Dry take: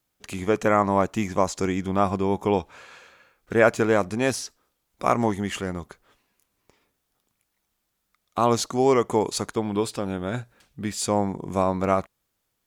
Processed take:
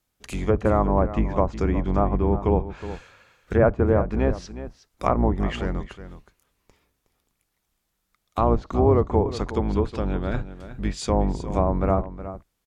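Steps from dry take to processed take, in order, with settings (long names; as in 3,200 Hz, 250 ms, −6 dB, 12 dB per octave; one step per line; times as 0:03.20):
sub-octave generator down 2 octaves, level +3 dB
treble cut that deepens with the level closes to 980 Hz, closed at −16 dBFS
single-tap delay 366 ms −13 dB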